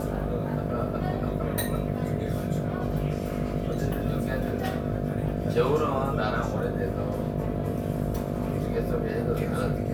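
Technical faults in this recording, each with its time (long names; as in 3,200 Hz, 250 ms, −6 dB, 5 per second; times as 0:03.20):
mains buzz 50 Hz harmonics 14 −32 dBFS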